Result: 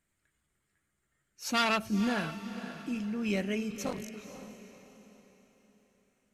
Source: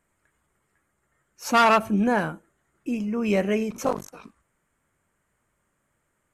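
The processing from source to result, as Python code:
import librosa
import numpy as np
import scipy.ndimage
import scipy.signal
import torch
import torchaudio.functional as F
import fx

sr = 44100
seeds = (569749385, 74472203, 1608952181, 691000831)

y = fx.graphic_eq_10(x, sr, hz=(500, 1000, 4000), db=(-5, -8, 6))
y = fx.echo_diffused(y, sr, ms=505, feedback_pct=40, wet_db=-11)
y = F.gain(torch.from_numpy(y), -6.0).numpy()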